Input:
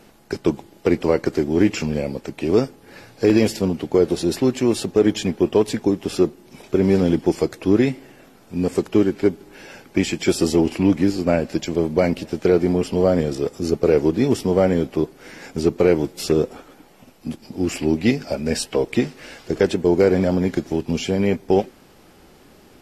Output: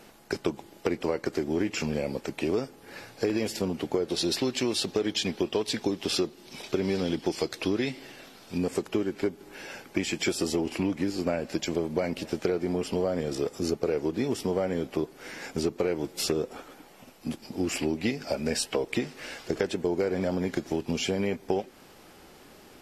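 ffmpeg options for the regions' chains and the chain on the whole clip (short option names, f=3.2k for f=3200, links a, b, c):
-filter_complex "[0:a]asettb=1/sr,asplit=3[a][b][c];[a]atrim=end=4.094[d];[b]atrim=start=4.09:end=8.58,asetpts=PTS-STARTPTS,afade=t=in:d=0.004:c=qsin,afade=t=out:st=4.486:d=0.004:c=qsin,equalizer=f=4.1k:w=0.93:g=9,bandreject=f=7k:w=29[e];[c]atrim=start=8.576[f];[d][e]acrossfade=d=0.004:c1=hsin:c2=qsin[g];[g][f]acrossfade=d=0.004:c1=qsin:c2=hsin,lowshelf=f=330:g=-6.5,acompressor=threshold=-24dB:ratio=6"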